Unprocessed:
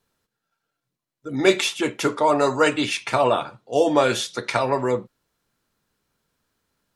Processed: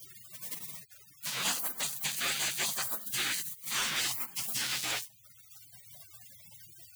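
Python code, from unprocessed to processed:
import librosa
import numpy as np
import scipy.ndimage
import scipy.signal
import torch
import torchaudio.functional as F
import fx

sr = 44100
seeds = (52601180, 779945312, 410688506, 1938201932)

y = x + 0.5 * 10.0 ** (-24.0 / 20.0) * np.sign(x)
y = scipy.signal.sosfilt(scipy.signal.butter(4, 290.0, 'highpass', fs=sr, output='sos'), y)
y = fx.spec_gate(y, sr, threshold_db=-30, keep='weak')
y = fx.notch(y, sr, hz=5300.0, q=6.9, at=(1.37, 3.82))
y = np.clip(y, -10.0 ** (-33.5 / 20.0), 10.0 ** (-33.5 / 20.0))
y = fx.band_squash(y, sr, depth_pct=40)
y = y * 10.0 ** (7.0 / 20.0)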